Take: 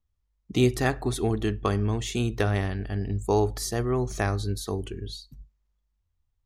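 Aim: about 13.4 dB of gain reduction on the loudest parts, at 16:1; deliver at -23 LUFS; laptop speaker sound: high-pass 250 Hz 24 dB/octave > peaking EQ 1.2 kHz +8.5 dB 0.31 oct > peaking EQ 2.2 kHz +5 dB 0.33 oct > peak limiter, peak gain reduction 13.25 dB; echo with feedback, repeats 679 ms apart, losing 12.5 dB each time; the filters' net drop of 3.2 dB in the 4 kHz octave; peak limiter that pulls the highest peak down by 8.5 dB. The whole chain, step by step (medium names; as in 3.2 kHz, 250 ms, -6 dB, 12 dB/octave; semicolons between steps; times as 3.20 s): peaking EQ 4 kHz -4.5 dB; compression 16:1, threshold -29 dBFS; peak limiter -24.5 dBFS; high-pass 250 Hz 24 dB/octave; peaking EQ 1.2 kHz +8.5 dB 0.31 oct; peaking EQ 2.2 kHz +5 dB 0.33 oct; feedback delay 679 ms, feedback 24%, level -12.5 dB; trim +23 dB; peak limiter -13.5 dBFS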